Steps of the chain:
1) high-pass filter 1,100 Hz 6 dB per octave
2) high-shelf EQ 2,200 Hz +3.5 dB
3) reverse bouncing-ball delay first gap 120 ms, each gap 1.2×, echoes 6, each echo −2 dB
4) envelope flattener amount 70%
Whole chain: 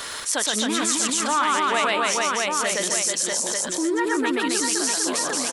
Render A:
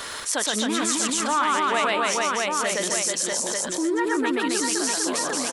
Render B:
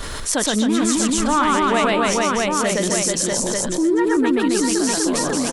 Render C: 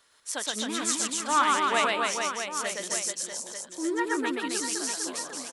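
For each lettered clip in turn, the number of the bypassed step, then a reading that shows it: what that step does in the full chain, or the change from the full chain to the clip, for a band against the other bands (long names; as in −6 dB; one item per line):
2, 8 kHz band −2.0 dB
1, 125 Hz band +12.5 dB
4, change in crest factor +2.5 dB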